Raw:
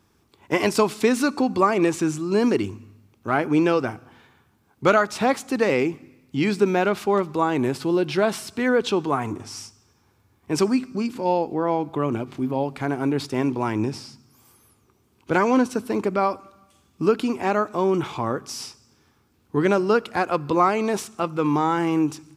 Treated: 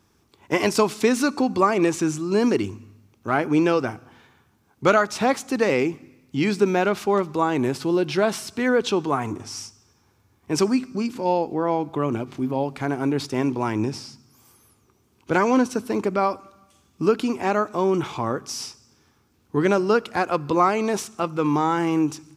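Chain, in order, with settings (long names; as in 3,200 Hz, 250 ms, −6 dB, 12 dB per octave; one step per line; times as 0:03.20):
parametric band 6,000 Hz +3.5 dB 0.46 octaves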